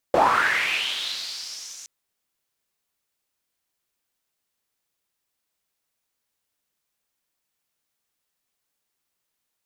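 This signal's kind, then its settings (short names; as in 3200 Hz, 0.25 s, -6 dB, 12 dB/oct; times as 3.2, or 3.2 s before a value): swept filtered noise pink, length 1.72 s bandpass, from 550 Hz, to 6400 Hz, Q 4.5, linear, gain ramp -23.5 dB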